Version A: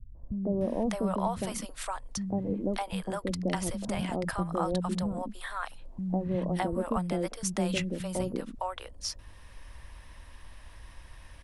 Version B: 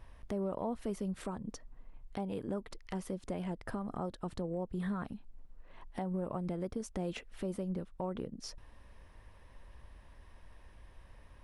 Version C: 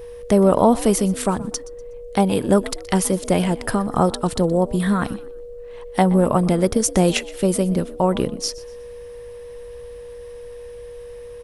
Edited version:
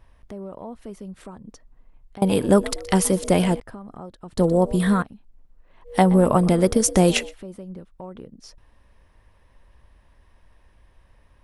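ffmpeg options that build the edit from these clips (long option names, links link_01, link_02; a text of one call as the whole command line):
ffmpeg -i take0.wav -i take1.wav -i take2.wav -filter_complex "[2:a]asplit=3[link_01][link_02][link_03];[1:a]asplit=4[link_04][link_05][link_06][link_07];[link_04]atrim=end=2.222[link_08];[link_01]atrim=start=2.218:end=3.602[link_09];[link_05]atrim=start=3.598:end=4.39[link_10];[link_02]atrim=start=4.37:end=5.03[link_11];[link_06]atrim=start=5.01:end=5.94[link_12];[link_03]atrim=start=5.84:end=7.35[link_13];[link_07]atrim=start=7.25[link_14];[link_08][link_09]acrossfade=duration=0.004:curve1=hsin:curve2=hsin[link_15];[link_15][link_10]acrossfade=duration=0.004:curve1=hsin:curve2=hsin[link_16];[link_16][link_11]acrossfade=duration=0.02:curve1=tri:curve2=tri[link_17];[link_17][link_12]acrossfade=duration=0.02:curve1=tri:curve2=tri[link_18];[link_18][link_13]acrossfade=duration=0.1:curve1=tri:curve2=tri[link_19];[link_19][link_14]acrossfade=duration=0.1:curve1=tri:curve2=tri" out.wav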